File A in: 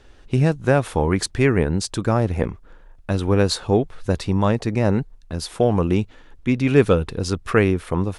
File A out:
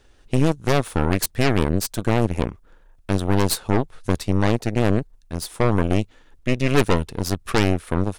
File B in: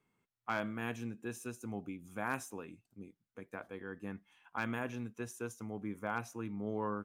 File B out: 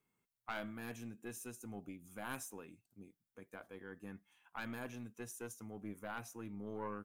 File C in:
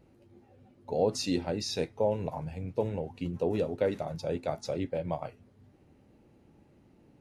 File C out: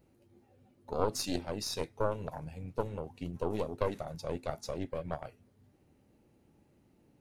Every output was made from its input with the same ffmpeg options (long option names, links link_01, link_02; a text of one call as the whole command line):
ffmpeg -i in.wav -af "aeval=exprs='0.891*(cos(1*acos(clip(val(0)/0.891,-1,1)))-cos(1*PI/2))+0.0501*(cos(5*acos(clip(val(0)/0.891,-1,1)))-cos(5*PI/2))+0.0398*(cos(7*acos(clip(val(0)/0.891,-1,1)))-cos(7*PI/2))+0.224*(cos(8*acos(clip(val(0)/0.891,-1,1)))-cos(8*PI/2))':channel_layout=same,highshelf=frequency=7300:gain=11,volume=-5.5dB" out.wav